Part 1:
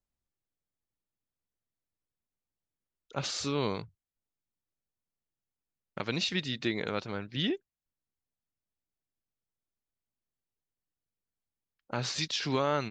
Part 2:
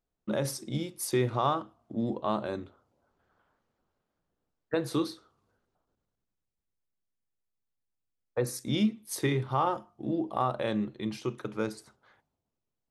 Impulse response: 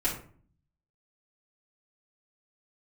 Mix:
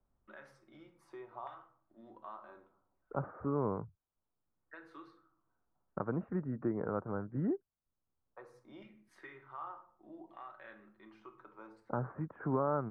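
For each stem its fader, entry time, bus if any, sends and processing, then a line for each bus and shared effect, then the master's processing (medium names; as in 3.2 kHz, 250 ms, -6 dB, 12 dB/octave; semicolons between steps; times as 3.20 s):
-0.5 dB, 0.00 s, no send, steep low-pass 1.4 kHz 48 dB/octave
-19.5 dB, 0.00 s, send -9 dB, LFO band-pass saw down 0.68 Hz 890–1900 Hz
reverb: on, RT60 0.50 s, pre-delay 3 ms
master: three bands compressed up and down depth 40%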